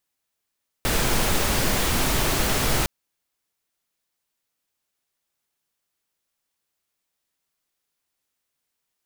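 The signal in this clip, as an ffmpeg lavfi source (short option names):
-f lavfi -i "anoisesrc=c=pink:a=0.432:d=2.01:r=44100:seed=1"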